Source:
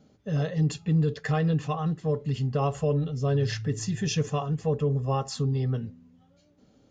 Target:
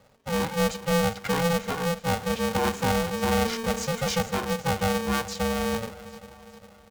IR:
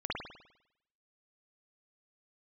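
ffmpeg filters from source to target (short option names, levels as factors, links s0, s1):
-filter_complex "[0:a]asettb=1/sr,asplit=3[s0][s1][s2];[s0]atrim=end=2.084[s3];[s1]atrim=start=2.08:end=4.19,asetpts=PTS-STARTPTS,afade=t=in:d=0.004:c=qsin,afade=t=out:st=2.106:d=0.004:c=qsin,aeval=exprs='val(0)+0.5*0.0106*sgn(val(0))':c=same[s4];[s2]atrim=start=4.186[s5];[s3][s4]acrossfade=d=0.004:c1=hsin:c2=qsin[s6];[s6][s5]acrossfade=d=0.004:c1=qsin:c2=hsin,aecho=1:1:405|810|1215|1620|2025:0.158|0.0872|0.0479|0.0264|0.0145,aeval=exprs='val(0)*sgn(sin(2*PI*340*n/s))':c=same"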